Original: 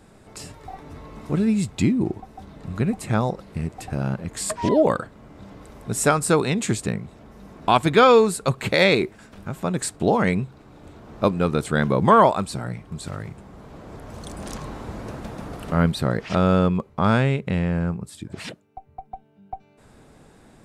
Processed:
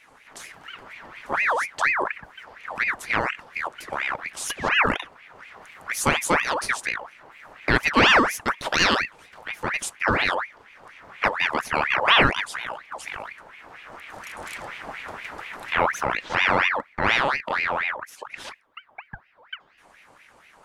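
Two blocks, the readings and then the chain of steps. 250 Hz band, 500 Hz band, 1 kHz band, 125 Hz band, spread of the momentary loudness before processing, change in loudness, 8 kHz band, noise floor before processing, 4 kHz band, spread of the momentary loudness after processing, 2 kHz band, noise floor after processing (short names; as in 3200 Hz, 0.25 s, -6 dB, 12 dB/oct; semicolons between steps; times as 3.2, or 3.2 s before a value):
-10.0 dB, -8.0 dB, -0.5 dB, -13.0 dB, 22 LU, -1.5 dB, -2.5 dB, -53 dBFS, +5.0 dB, 21 LU, +8.0 dB, -56 dBFS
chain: ring modulator with a swept carrier 1500 Hz, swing 55%, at 4.2 Hz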